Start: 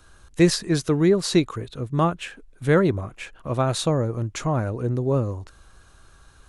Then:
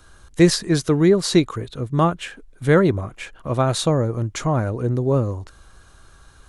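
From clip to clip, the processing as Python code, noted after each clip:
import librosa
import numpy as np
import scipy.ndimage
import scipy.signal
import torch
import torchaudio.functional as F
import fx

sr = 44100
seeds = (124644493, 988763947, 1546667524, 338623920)

y = fx.notch(x, sr, hz=2600.0, q=20.0)
y = y * librosa.db_to_amplitude(3.0)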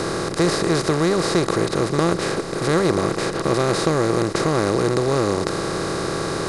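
y = fx.bin_compress(x, sr, power=0.2)
y = y * librosa.db_to_amplitude(-9.0)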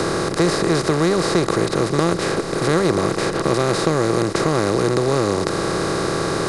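y = fx.band_squash(x, sr, depth_pct=40)
y = y * librosa.db_to_amplitude(1.0)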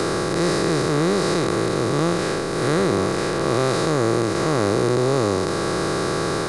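y = fx.spec_blur(x, sr, span_ms=162.0)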